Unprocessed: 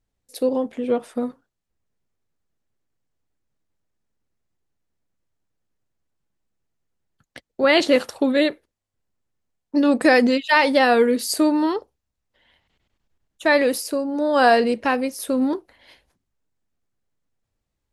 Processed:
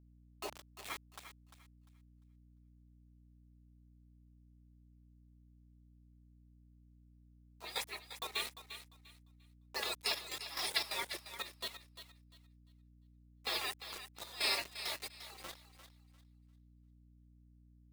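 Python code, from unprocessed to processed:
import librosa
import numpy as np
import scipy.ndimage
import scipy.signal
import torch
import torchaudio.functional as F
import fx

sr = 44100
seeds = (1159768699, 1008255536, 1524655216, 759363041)

p1 = fx.hum_notches(x, sr, base_hz=60, count=8)
p2 = fx.dereverb_blind(p1, sr, rt60_s=1.2)
p3 = fx.spec_gate(p2, sr, threshold_db=-30, keep='weak')
p4 = scipy.signal.sosfilt(scipy.signal.butter(4, 300.0, 'highpass', fs=sr, output='sos'), p3)
p5 = fx.notch_comb(p4, sr, f0_hz=1500.0)
p6 = fx.quant_dither(p5, sr, seeds[0], bits=8, dither='none')
p7 = fx.step_gate(p6, sr, bpm=176, pattern='.x..xxx.xxxx.x.', floor_db=-12.0, edge_ms=4.5)
p8 = fx.add_hum(p7, sr, base_hz=60, snr_db=16)
p9 = p8 + fx.echo_thinned(p8, sr, ms=348, feedback_pct=25, hz=550.0, wet_db=-11.0, dry=0)
y = F.gain(torch.from_numpy(p9), 5.0).numpy()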